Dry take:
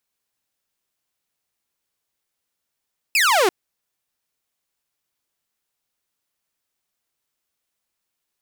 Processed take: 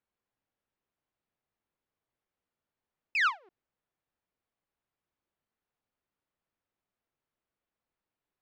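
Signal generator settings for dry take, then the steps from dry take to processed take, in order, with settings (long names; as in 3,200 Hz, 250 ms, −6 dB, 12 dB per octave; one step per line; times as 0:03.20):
single falling chirp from 2,700 Hz, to 340 Hz, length 0.34 s saw, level −11.5 dB
head-to-tape spacing loss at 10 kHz 40 dB
every ending faded ahead of time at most 290 dB per second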